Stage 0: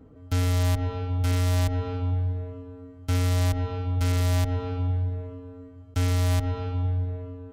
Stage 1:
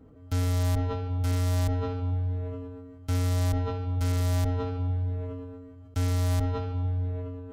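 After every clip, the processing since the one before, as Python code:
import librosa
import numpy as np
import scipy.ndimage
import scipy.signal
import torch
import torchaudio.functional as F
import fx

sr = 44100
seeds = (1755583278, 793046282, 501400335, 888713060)

y = fx.dynamic_eq(x, sr, hz=2600.0, q=1.2, threshold_db=-51.0, ratio=4.0, max_db=-4)
y = fx.sustainer(y, sr, db_per_s=30.0)
y = y * librosa.db_to_amplitude(-3.0)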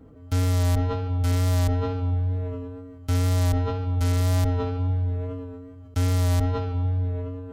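y = fx.wow_flutter(x, sr, seeds[0], rate_hz=2.1, depth_cents=23.0)
y = y * librosa.db_to_amplitude(4.0)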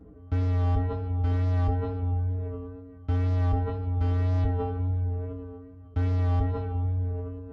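y = fx.spacing_loss(x, sr, db_at_10k=43)
y = fx.comb_fb(y, sr, f0_hz=61.0, decay_s=0.19, harmonics='odd', damping=0.0, mix_pct=90)
y = y * librosa.db_to_amplitude(8.5)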